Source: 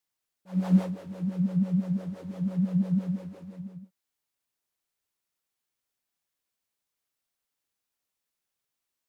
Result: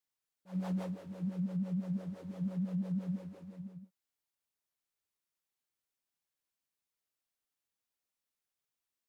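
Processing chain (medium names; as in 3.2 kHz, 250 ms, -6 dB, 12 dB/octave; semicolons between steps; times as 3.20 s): peak limiter -23 dBFS, peak gain reduction 11 dB; trim -6 dB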